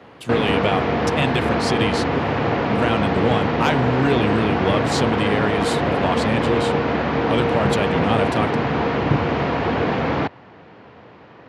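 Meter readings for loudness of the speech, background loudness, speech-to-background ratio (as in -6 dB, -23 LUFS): -24.0 LUFS, -21.0 LUFS, -3.0 dB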